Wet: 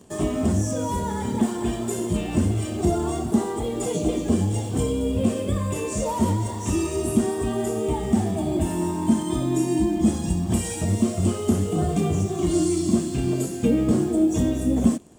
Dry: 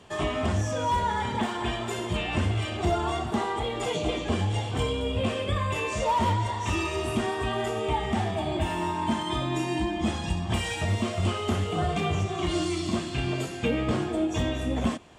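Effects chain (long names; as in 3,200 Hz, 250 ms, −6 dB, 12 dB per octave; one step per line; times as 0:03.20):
drawn EQ curve 120 Hz 0 dB, 200 Hz +7 dB, 300 Hz +6 dB, 920 Hz −7 dB, 2,400 Hz −11 dB, 3,500 Hz −9 dB, 8,500 Hz +9 dB
in parallel at −9 dB: bit reduction 7 bits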